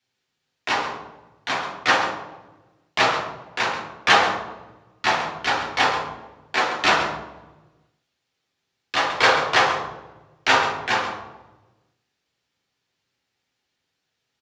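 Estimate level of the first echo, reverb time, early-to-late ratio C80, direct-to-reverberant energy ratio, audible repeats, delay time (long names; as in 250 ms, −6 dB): −11.0 dB, 1.1 s, 7.0 dB, −3.0 dB, 1, 134 ms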